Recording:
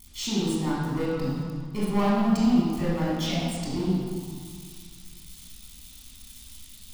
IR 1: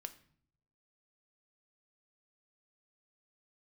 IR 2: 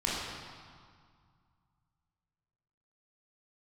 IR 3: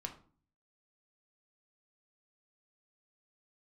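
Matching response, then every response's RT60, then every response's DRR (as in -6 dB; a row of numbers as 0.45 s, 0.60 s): 2; 0.60 s, 2.0 s, 0.45 s; 8.5 dB, -7.0 dB, 3.5 dB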